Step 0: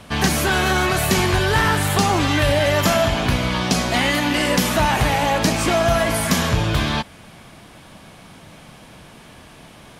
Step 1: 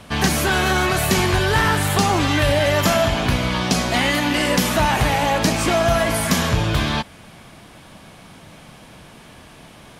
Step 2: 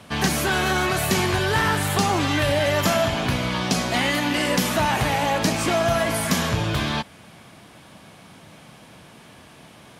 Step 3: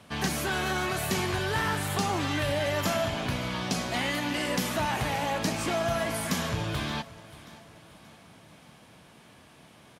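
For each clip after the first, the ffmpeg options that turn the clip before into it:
-af anull
-af "highpass=80,volume=-3dB"
-af "aecho=1:1:579|1158|1737|2316:0.112|0.0527|0.0248|0.0116,volume=-7.5dB"

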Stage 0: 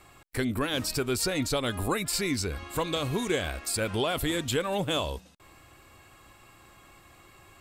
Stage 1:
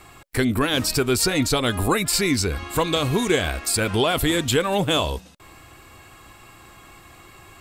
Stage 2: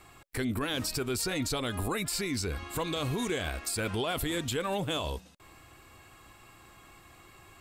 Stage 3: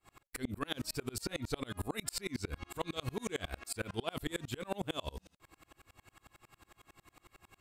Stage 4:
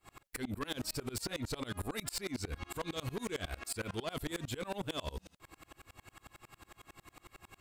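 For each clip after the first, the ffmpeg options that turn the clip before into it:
-af "bandreject=f=560:w=15,volume=8dB"
-af "alimiter=limit=-14.5dB:level=0:latency=1:release=46,volume=-8dB"
-af "aeval=exprs='val(0)*pow(10,-34*if(lt(mod(-11*n/s,1),2*abs(-11)/1000),1-mod(-11*n/s,1)/(2*abs(-11)/1000),(mod(-11*n/s,1)-2*abs(-11)/1000)/(1-2*abs(-11)/1000))/20)':c=same,volume=1.5dB"
-af "asoftclip=type=tanh:threshold=-37dB,volume=5dB"

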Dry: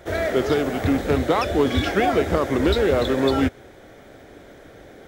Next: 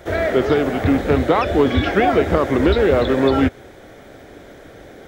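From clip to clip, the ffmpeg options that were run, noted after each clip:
-filter_complex "[0:a]acrossover=split=3600[a][b];[b]acompressor=threshold=-49dB:ratio=4:attack=1:release=60[c];[a][c]amix=inputs=2:normalize=0,volume=4dB"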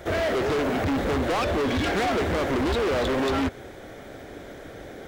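-af "asoftclip=type=hard:threshold=-22.5dB"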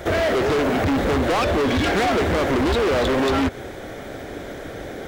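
-af "acompressor=threshold=-26dB:ratio=6,volume=7.5dB"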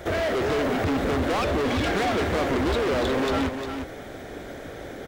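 -af "aecho=1:1:354:0.422,volume=-5dB"

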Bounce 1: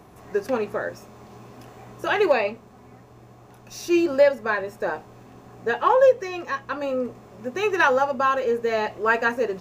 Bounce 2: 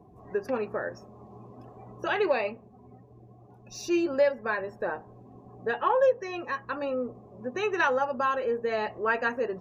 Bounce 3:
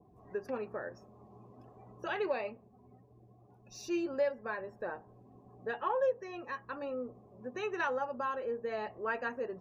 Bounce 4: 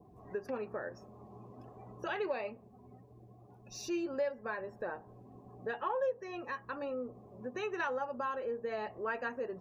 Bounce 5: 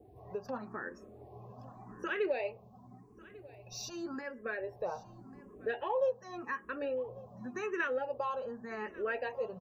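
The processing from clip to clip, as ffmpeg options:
-filter_complex "[0:a]afftdn=nr=22:nf=-45,asplit=2[a][b];[b]acompressor=threshold=-28dB:ratio=6,volume=-1dB[c];[a][c]amix=inputs=2:normalize=0,volume=-8dB"
-af "adynamicequalizer=threshold=0.01:dfrequency=1600:dqfactor=0.7:tfrequency=1600:tqfactor=0.7:attack=5:release=100:ratio=0.375:range=2.5:mode=cutabove:tftype=highshelf,volume=-8dB"
-af "acompressor=threshold=-45dB:ratio=1.5,volume=3.5dB"
-filter_complex "[0:a]aecho=1:1:1145:0.0891,asplit=2[a][b];[b]afreqshift=0.88[c];[a][c]amix=inputs=2:normalize=1,volume=4dB"

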